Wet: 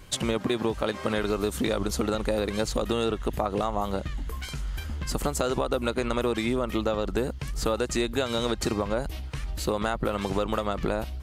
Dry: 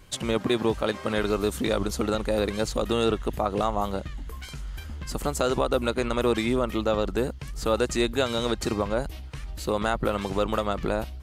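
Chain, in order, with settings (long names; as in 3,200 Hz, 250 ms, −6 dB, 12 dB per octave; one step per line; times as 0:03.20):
downward compressor, threshold −26 dBFS, peak gain reduction 8 dB
level +3.5 dB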